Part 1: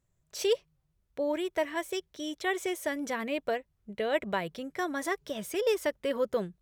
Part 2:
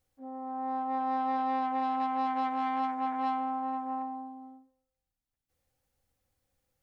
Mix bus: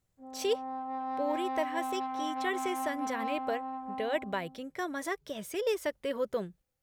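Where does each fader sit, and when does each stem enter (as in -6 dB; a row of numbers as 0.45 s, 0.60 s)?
-3.0 dB, -5.0 dB; 0.00 s, 0.00 s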